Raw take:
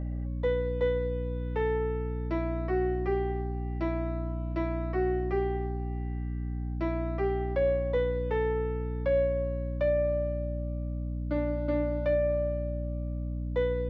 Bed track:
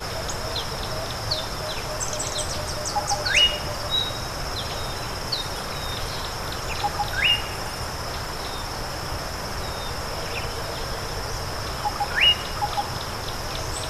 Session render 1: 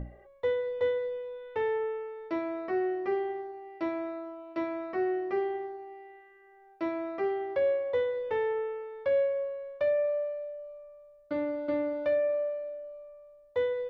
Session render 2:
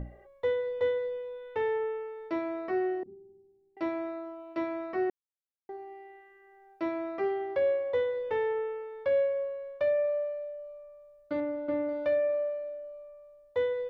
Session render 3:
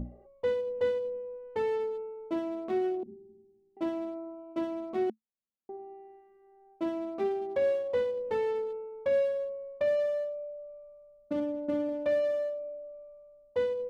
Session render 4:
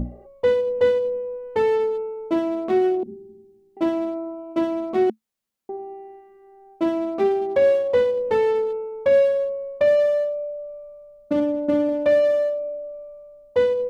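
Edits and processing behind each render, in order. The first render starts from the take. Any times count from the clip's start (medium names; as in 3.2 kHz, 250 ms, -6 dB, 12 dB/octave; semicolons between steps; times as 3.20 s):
hum notches 60/120/180/240/300/360 Hz
3.03–3.77 s: four-pole ladder low-pass 250 Hz, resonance 35%; 5.10–5.69 s: mute; 11.40–11.89 s: distance through air 290 m
local Wiener filter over 25 samples; peaking EQ 220 Hz +15 dB 0.29 oct
trim +10.5 dB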